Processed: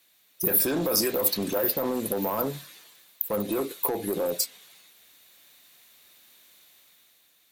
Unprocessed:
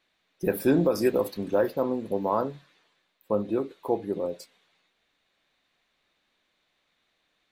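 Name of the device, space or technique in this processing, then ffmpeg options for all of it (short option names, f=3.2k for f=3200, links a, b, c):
FM broadcast chain: -filter_complex "[0:a]highpass=52,dynaudnorm=f=160:g=9:m=7dB,acrossover=split=450|6900[a][b][c];[a]acompressor=threshold=-27dB:ratio=4[d];[b]acompressor=threshold=-22dB:ratio=4[e];[c]acompressor=threshold=-56dB:ratio=4[f];[d][e][f]amix=inputs=3:normalize=0,aemphasis=mode=production:type=50fm,alimiter=limit=-20dB:level=0:latency=1:release=11,asoftclip=type=hard:threshold=-23.5dB,lowpass=f=15k:w=0.5412,lowpass=f=15k:w=1.3066,aemphasis=mode=production:type=50fm,volume=1.5dB"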